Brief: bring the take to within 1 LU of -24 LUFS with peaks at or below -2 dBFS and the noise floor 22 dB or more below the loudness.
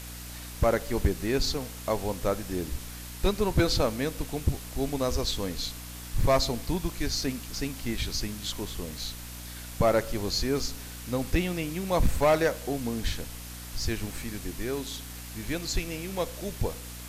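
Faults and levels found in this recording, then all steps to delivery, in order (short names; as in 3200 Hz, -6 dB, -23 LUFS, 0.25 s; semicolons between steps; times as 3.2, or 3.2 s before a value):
hum 60 Hz; harmonics up to 300 Hz; hum level -40 dBFS; noise floor -41 dBFS; noise floor target -52 dBFS; loudness -30.0 LUFS; peak -14.5 dBFS; loudness target -24.0 LUFS
-> de-hum 60 Hz, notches 5; denoiser 11 dB, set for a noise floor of -41 dBFS; gain +6 dB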